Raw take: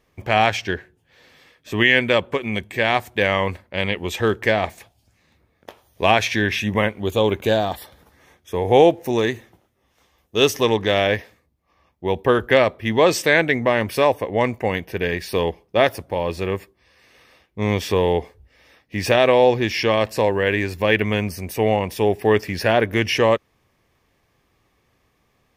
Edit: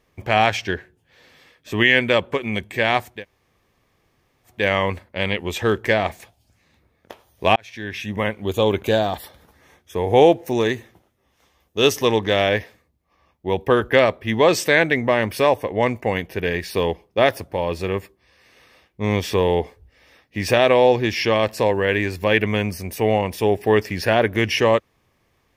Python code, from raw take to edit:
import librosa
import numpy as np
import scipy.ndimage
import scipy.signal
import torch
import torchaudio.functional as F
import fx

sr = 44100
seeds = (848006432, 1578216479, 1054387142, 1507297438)

y = fx.edit(x, sr, fx.insert_room_tone(at_s=3.13, length_s=1.42, crossfade_s=0.24),
    fx.fade_in_span(start_s=6.14, length_s=0.98), tone=tone)